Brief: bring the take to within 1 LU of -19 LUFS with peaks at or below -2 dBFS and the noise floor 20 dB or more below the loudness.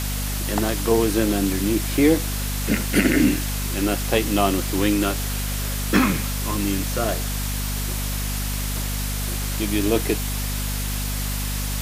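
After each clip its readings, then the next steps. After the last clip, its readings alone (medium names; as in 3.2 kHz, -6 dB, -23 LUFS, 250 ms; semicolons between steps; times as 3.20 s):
hum 50 Hz; highest harmonic 250 Hz; hum level -24 dBFS; noise floor -26 dBFS; noise floor target -43 dBFS; loudness -22.5 LUFS; peak level -4.0 dBFS; loudness target -19.0 LUFS
-> de-hum 50 Hz, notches 5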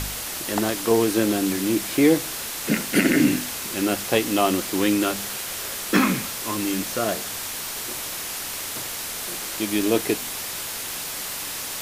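hum not found; noise floor -32 dBFS; noise floor target -44 dBFS
-> noise print and reduce 12 dB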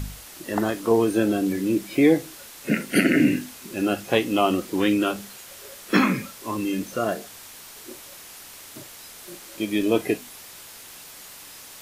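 noise floor -44 dBFS; loudness -23.5 LUFS; peak level -4.5 dBFS; loudness target -19.0 LUFS
-> trim +4.5 dB; peak limiter -2 dBFS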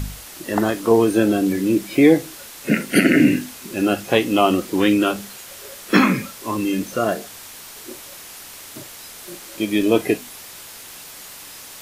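loudness -19.0 LUFS; peak level -2.0 dBFS; noise floor -39 dBFS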